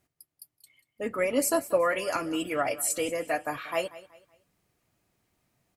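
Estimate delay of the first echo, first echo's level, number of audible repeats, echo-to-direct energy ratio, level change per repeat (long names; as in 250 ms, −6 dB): 187 ms, −17.5 dB, 2, −17.0 dB, −9.5 dB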